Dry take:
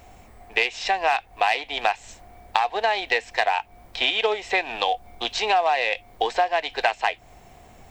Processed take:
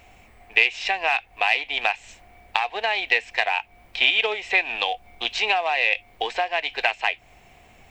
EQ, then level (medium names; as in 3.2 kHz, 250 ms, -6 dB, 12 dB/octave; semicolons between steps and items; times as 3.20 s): peaking EQ 2.5 kHz +10.5 dB 0.9 oct; -4.5 dB